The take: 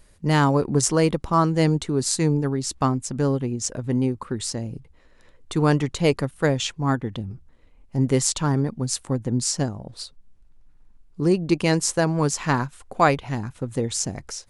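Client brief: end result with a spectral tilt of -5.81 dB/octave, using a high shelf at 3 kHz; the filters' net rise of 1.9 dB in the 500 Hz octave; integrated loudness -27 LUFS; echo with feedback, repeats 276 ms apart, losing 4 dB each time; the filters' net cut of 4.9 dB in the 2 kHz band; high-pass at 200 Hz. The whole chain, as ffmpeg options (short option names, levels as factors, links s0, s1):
-af "highpass=200,equalizer=f=500:t=o:g=3,equalizer=f=2000:t=o:g=-3.5,highshelf=f=3000:g=-9,aecho=1:1:276|552|828|1104|1380|1656|1932|2208|2484:0.631|0.398|0.25|0.158|0.0994|0.0626|0.0394|0.0249|0.0157,volume=0.596"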